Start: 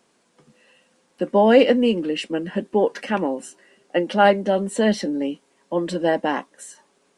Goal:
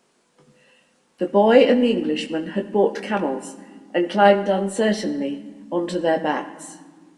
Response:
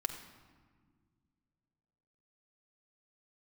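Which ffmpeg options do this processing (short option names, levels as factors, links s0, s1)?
-filter_complex "[0:a]asplit=2[s0][s1];[1:a]atrim=start_sample=2205,adelay=20[s2];[s1][s2]afir=irnorm=-1:irlink=0,volume=0.501[s3];[s0][s3]amix=inputs=2:normalize=0,volume=0.891"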